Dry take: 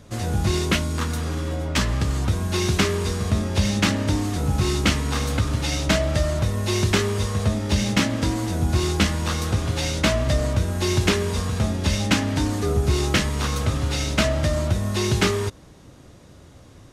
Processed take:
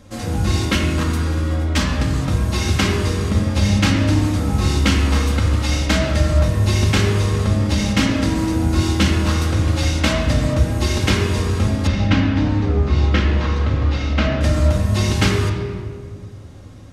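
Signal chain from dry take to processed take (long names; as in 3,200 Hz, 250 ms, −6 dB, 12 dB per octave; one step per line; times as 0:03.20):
0:11.87–0:14.41: high-frequency loss of the air 200 metres
convolution reverb RT60 1.8 s, pre-delay 4 ms, DRR −0.5 dB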